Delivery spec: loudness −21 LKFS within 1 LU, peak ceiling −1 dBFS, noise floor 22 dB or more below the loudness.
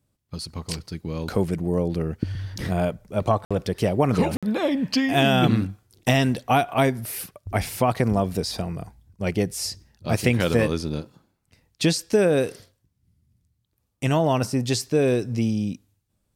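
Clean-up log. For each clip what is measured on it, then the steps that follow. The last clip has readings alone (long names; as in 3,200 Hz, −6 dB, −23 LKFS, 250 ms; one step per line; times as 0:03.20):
number of dropouts 2; longest dropout 56 ms; integrated loudness −24.0 LKFS; sample peak −5.0 dBFS; target loudness −21.0 LKFS
→ repair the gap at 0:03.45/0:04.37, 56 ms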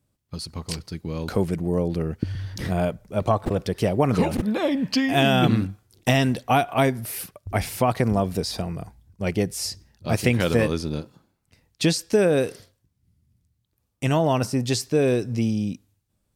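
number of dropouts 0; integrated loudness −24.0 LKFS; sample peak −5.0 dBFS; target loudness −21.0 LKFS
→ level +3 dB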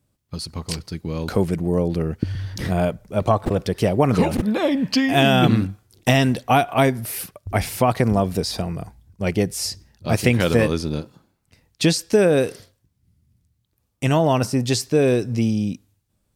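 integrated loudness −21.0 LKFS; sample peak −2.0 dBFS; background noise floor −70 dBFS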